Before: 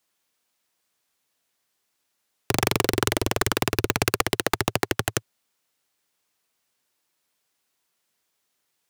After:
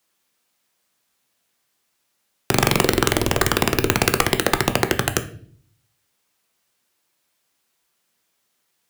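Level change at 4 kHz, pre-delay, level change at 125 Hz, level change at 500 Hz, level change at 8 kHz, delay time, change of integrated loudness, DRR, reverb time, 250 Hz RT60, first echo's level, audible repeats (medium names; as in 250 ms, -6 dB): +4.5 dB, 5 ms, +5.5 dB, +5.0 dB, +4.0 dB, no echo, +5.0 dB, 7.5 dB, 0.50 s, 0.80 s, no echo, no echo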